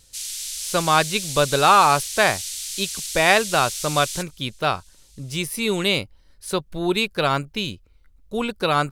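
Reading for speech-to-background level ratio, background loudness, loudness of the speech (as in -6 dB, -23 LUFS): 6.5 dB, -28.0 LUFS, -21.5 LUFS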